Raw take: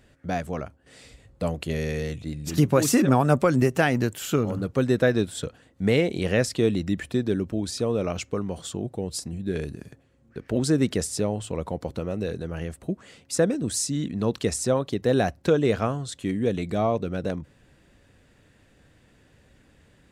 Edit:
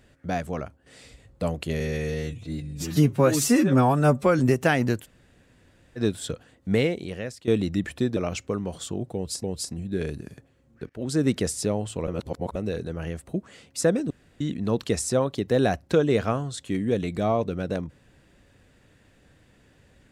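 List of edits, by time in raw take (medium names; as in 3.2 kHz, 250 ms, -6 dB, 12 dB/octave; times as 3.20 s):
1.80–3.53 s: stretch 1.5×
4.17–5.12 s: room tone, crossfade 0.06 s
5.87–6.61 s: fade out quadratic, to -14.5 dB
7.30–8.00 s: delete
8.98–9.27 s: loop, 2 plays
10.44–10.81 s: fade in, from -19 dB
11.62–12.10 s: reverse
13.65–13.95 s: room tone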